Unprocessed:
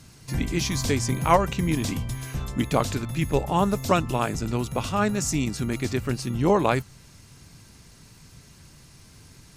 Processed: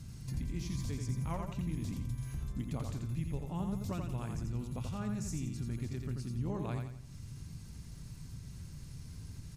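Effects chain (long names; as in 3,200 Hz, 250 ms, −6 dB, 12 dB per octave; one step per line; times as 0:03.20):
bass and treble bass +15 dB, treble +3 dB
downward compressor 2.5 to 1, threshold −34 dBFS, peak gain reduction 17.5 dB
on a send: repeating echo 86 ms, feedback 38%, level −5 dB
on the sum: level −9 dB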